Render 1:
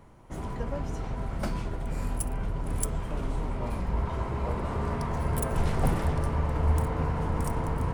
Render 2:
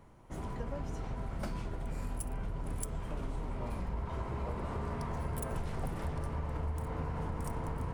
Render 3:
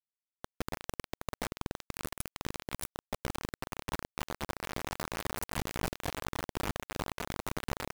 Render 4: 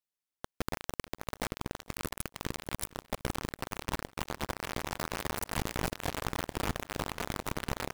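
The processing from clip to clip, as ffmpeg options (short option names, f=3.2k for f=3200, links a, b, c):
-af "acompressor=threshold=-28dB:ratio=6,volume=-4.5dB"
-af "aeval=exprs='val(0)+0.00282*(sin(2*PI*60*n/s)+sin(2*PI*2*60*n/s)/2+sin(2*PI*3*60*n/s)/3+sin(2*PI*4*60*n/s)/4+sin(2*PI*5*60*n/s)/5)':c=same,acrusher=bits=4:mix=0:aa=0.000001"
-af "aecho=1:1:462|924|1386|1848|2310:0.0891|0.0526|0.031|0.0183|0.0108,volume=2dB"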